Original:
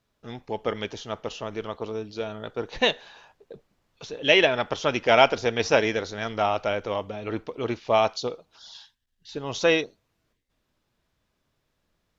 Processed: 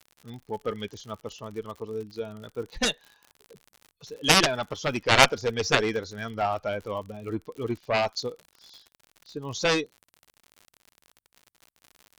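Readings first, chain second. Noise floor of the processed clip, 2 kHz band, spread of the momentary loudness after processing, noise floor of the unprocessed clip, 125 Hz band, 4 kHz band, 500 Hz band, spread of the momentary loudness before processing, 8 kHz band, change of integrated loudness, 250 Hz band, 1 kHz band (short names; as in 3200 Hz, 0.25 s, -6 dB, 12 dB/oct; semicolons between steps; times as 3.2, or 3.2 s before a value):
under -85 dBFS, -0.5 dB, 19 LU, -76 dBFS, +2.0 dB, +1.0 dB, -5.0 dB, 18 LU, n/a, -1.5 dB, -1.5 dB, -1.5 dB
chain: per-bin expansion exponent 1.5; added harmonics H 4 -27 dB, 7 -10 dB, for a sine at -3 dBFS; crackle 76/s -39 dBFS; gain +1.5 dB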